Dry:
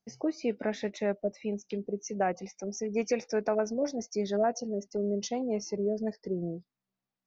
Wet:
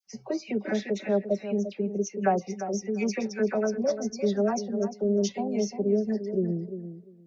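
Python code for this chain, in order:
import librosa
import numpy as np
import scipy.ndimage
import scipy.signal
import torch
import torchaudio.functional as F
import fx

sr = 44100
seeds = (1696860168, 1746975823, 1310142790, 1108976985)

p1 = scipy.signal.sosfilt(scipy.signal.butter(2, 48.0, 'highpass', fs=sr, output='sos'), x)
p2 = fx.low_shelf(p1, sr, hz=150.0, db=4.0)
p3 = p2 + 0.86 * np.pad(p2, (int(5.2 * sr / 1000.0), 0))[:len(p2)]
p4 = fx.dispersion(p3, sr, late='lows', ms=69.0, hz=1500.0)
y = p4 + fx.echo_filtered(p4, sr, ms=348, feedback_pct=17, hz=1900.0, wet_db=-10, dry=0)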